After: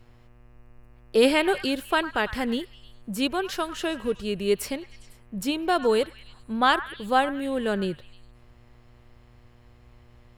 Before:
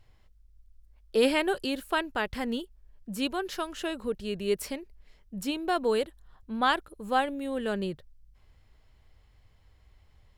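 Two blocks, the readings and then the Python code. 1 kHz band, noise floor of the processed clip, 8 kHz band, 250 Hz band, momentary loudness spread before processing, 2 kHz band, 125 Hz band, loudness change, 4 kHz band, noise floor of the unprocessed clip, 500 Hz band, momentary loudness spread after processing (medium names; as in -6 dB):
+4.5 dB, -54 dBFS, +4.5 dB, +4.5 dB, 12 LU, +5.0 dB, +5.0 dB, +4.5 dB, +4.5 dB, -61 dBFS, +4.5 dB, 12 LU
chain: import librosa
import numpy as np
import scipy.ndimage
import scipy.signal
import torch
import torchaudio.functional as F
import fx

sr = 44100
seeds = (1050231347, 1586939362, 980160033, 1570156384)

y = fx.dmg_buzz(x, sr, base_hz=120.0, harmonics=24, level_db=-62.0, tilt_db=-6, odd_only=False)
y = fx.echo_stepped(y, sr, ms=101, hz=1400.0, octaves=0.7, feedback_pct=70, wet_db=-11)
y = y * 10.0 ** (4.5 / 20.0)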